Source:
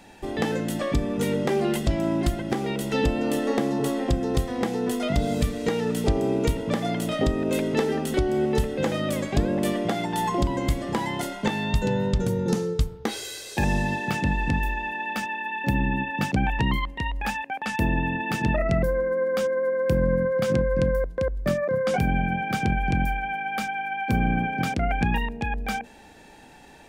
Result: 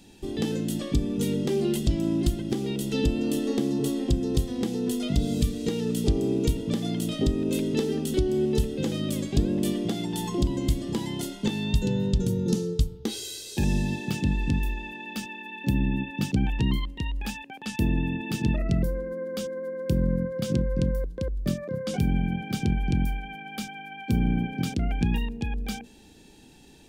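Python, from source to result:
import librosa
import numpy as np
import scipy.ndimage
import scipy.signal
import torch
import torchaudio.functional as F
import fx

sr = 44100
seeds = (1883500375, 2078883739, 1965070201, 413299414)

y = fx.band_shelf(x, sr, hz=1100.0, db=-12.5, octaves=2.4)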